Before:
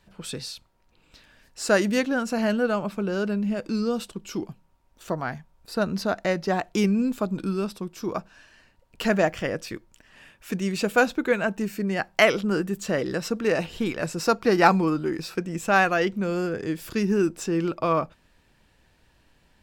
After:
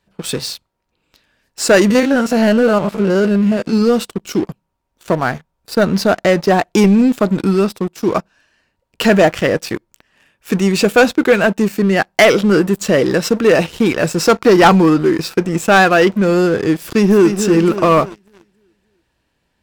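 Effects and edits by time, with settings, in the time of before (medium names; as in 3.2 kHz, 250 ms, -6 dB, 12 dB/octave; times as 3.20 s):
1.90–3.82 s: spectrogram pixelated in time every 50 ms
16.81–17.39 s: echo throw 290 ms, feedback 50%, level -9 dB
whole clip: high-pass 54 Hz 6 dB/octave; peaking EQ 420 Hz +2 dB; waveshaping leveller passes 3; trim +1.5 dB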